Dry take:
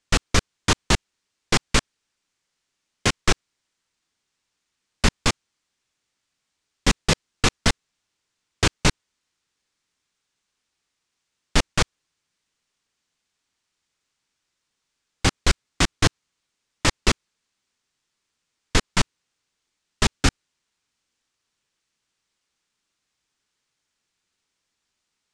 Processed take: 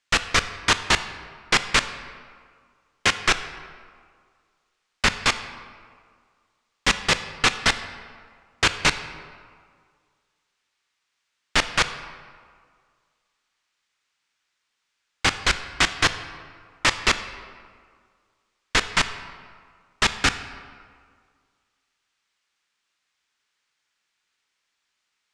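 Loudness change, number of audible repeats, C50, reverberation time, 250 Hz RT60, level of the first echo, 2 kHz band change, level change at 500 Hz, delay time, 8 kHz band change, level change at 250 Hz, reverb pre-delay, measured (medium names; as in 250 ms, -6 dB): +1.0 dB, no echo, 11.5 dB, 1.9 s, 1.9 s, no echo, +5.0 dB, -3.0 dB, no echo, -1.0 dB, -6.5 dB, 20 ms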